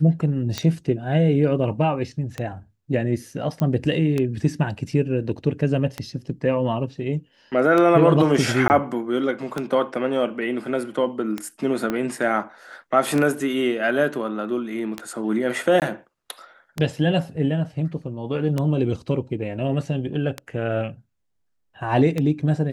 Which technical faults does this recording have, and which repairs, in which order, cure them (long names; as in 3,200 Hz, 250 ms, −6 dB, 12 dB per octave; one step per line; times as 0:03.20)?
scratch tick 33 1/3 rpm −11 dBFS
0:03.60: click −13 dBFS
0:08.68–0:08.70: drop-out 19 ms
0:11.90: click −12 dBFS
0:15.80–0:15.82: drop-out 18 ms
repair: click removal
repair the gap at 0:08.68, 19 ms
repair the gap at 0:15.80, 18 ms